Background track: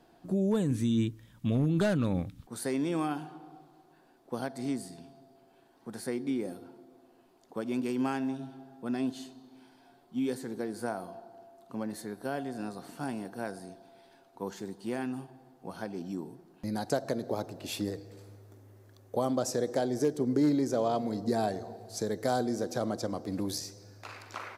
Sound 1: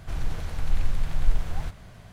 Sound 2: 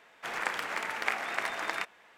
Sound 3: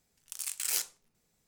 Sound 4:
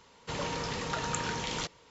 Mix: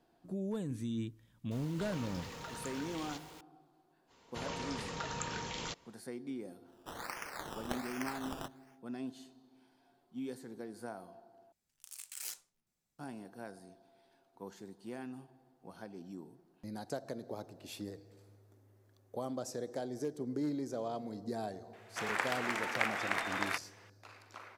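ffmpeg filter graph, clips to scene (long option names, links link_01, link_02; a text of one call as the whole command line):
ffmpeg -i bed.wav -i cue0.wav -i cue1.wav -i cue2.wav -i cue3.wav -filter_complex "[4:a]asplit=2[link_01][link_02];[2:a]asplit=2[link_03][link_04];[0:a]volume=-10dB[link_05];[link_01]aeval=exprs='val(0)+0.5*0.0168*sgn(val(0))':channel_layout=same[link_06];[link_03]acrusher=samples=16:mix=1:aa=0.000001:lfo=1:lforange=9.6:lforate=1.3[link_07];[3:a]equalizer=frequency=460:width=7.7:gain=-10[link_08];[link_04]acontrast=35[link_09];[link_05]asplit=2[link_10][link_11];[link_10]atrim=end=11.524[link_12];[link_08]atrim=end=1.47,asetpts=PTS-STARTPTS,volume=-12dB[link_13];[link_11]atrim=start=12.986[link_14];[link_06]atrim=end=1.9,asetpts=PTS-STARTPTS,volume=-14.5dB,afade=type=in:duration=0.004:curve=hsin,afade=type=out:start_time=1.896:duration=0.004:curve=hsin,adelay=1510[link_15];[link_02]atrim=end=1.9,asetpts=PTS-STARTPTS,volume=-6.5dB,afade=type=in:duration=0.05,afade=type=out:start_time=1.85:duration=0.05,adelay=4070[link_16];[link_07]atrim=end=2.17,asetpts=PTS-STARTPTS,volume=-9.5dB,afade=type=in:duration=0.1,afade=type=out:start_time=2.07:duration=0.1,adelay=6630[link_17];[link_09]atrim=end=2.17,asetpts=PTS-STARTPTS,volume=-7.5dB,afade=type=in:duration=0.004:curve=hsin,afade=type=out:start_time=2.166:duration=0.004:curve=hsin,adelay=21730[link_18];[link_12][link_13]acrossfade=duration=0.004:curve1=hsin:curve2=hsin[link_19];[link_19][link_14]acrossfade=duration=0.004:curve1=hsin:curve2=hsin[link_20];[link_20][link_15][link_16][link_17][link_18]amix=inputs=5:normalize=0" out.wav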